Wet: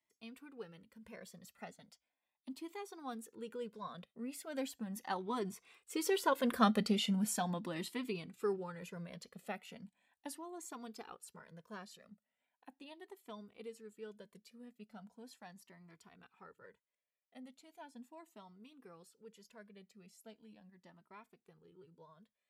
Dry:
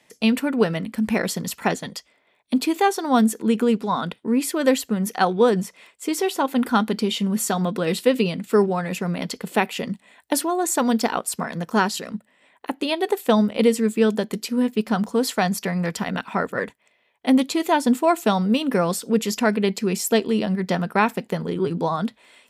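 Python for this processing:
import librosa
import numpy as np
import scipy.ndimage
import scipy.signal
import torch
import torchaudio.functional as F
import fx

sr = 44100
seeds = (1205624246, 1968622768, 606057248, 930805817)

y = fx.doppler_pass(x, sr, speed_mps=7, closest_m=3.5, pass_at_s=6.6)
y = fx.comb_cascade(y, sr, direction='rising', hz=0.38)
y = y * 10.0 ** (-3.5 / 20.0)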